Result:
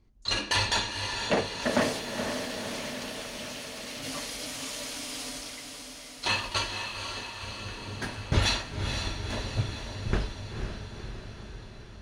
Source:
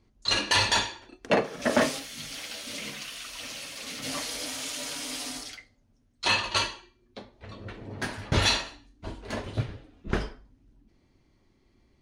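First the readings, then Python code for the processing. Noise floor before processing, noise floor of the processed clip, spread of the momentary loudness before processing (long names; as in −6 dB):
−66 dBFS, −45 dBFS, 20 LU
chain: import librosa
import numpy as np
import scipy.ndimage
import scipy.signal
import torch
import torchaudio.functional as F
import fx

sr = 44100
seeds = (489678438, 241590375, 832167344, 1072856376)

p1 = fx.low_shelf(x, sr, hz=94.0, db=9.0)
p2 = p1 + fx.echo_diffused(p1, sr, ms=498, feedback_pct=65, wet_db=-6, dry=0)
y = F.gain(torch.from_numpy(p2), -3.5).numpy()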